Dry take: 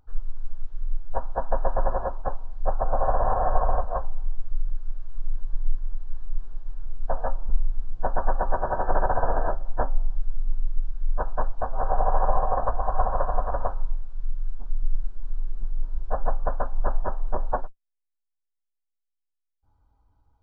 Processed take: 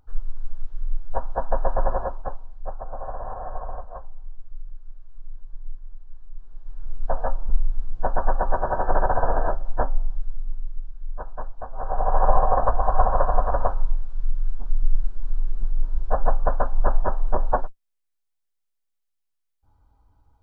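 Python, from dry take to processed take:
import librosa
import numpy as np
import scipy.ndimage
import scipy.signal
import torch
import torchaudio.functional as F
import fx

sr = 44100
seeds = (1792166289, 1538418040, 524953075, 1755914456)

y = fx.gain(x, sr, db=fx.line((1.98, 1.5), (2.86, -10.0), (6.36, -10.0), (6.92, 2.0), (9.82, 2.0), (10.9, -7.0), (11.69, -7.0), (12.28, 4.5)))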